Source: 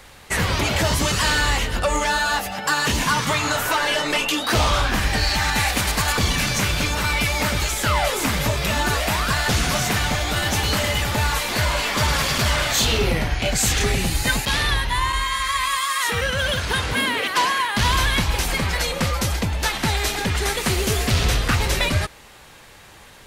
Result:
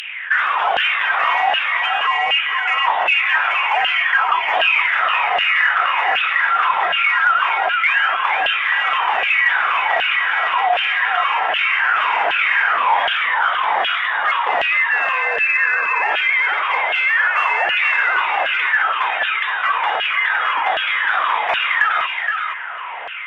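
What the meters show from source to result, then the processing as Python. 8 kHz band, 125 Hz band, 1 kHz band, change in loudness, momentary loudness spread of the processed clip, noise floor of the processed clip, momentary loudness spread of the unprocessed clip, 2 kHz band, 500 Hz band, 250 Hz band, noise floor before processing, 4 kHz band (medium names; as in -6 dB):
under -30 dB, under -35 dB, +7.0 dB, +4.5 dB, 3 LU, -24 dBFS, 3 LU, +8.5 dB, -2.0 dB, under -20 dB, -46 dBFS, -0.5 dB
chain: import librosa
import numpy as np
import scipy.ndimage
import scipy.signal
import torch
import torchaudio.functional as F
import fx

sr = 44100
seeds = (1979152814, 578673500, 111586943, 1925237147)

p1 = np.diff(x, prepend=0.0)
p2 = fx.freq_invert(p1, sr, carrier_hz=3700)
p3 = 10.0 ** (-32.0 / 20.0) * np.tanh(p2 / 10.0 ** (-32.0 / 20.0))
p4 = p2 + (p3 * librosa.db_to_amplitude(-9.0))
p5 = fx.filter_lfo_highpass(p4, sr, shape='saw_down', hz=1.3, low_hz=670.0, high_hz=2900.0, q=7.0)
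p6 = p5 + fx.echo_single(p5, sr, ms=471, db=-9.0, dry=0)
p7 = fx.cheby_harmonics(p6, sr, harmonics=(2, 4), levels_db=(-25, -36), full_scale_db=-9.5)
p8 = fx.env_flatten(p7, sr, amount_pct=50)
y = p8 * librosa.db_to_amplitude(5.0)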